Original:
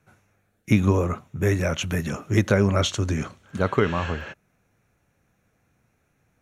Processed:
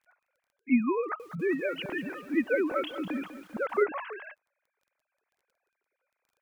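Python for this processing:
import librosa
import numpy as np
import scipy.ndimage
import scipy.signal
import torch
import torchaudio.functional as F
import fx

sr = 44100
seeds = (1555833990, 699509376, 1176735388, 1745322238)

y = fx.sine_speech(x, sr)
y = fx.dmg_crackle(y, sr, seeds[0], per_s=17.0, level_db=-48.0)
y = fx.echo_crushed(y, sr, ms=197, feedback_pct=55, bits=7, wet_db=-12.0, at=(1.0, 3.83))
y = y * 10.0 ** (-7.5 / 20.0)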